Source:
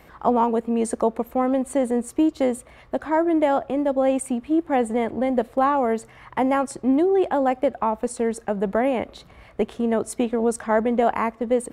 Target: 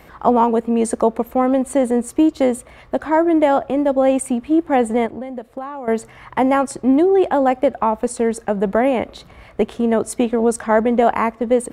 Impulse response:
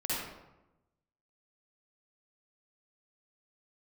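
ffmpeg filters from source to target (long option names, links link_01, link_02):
-filter_complex "[0:a]asettb=1/sr,asplit=3[link_01][link_02][link_03];[link_01]atrim=end=5.064[link_04];[link_02]atrim=start=5.06:end=5.88,asetpts=PTS-STARTPTS,afade=type=in:duration=0.004:curve=qsin,afade=type=out:start_time=0.816:duration=0.004:curve=qsin,acompressor=threshold=-33dB:ratio=5[link_05];[link_03]atrim=start=5.876[link_06];[link_04][link_05]acrossfade=duration=0.004:curve1=hsin:curve2=qsin[link_07];[link_07][link_06]acrossfade=duration=0.004:curve1=qsin:curve2=hsin,volume=5dB"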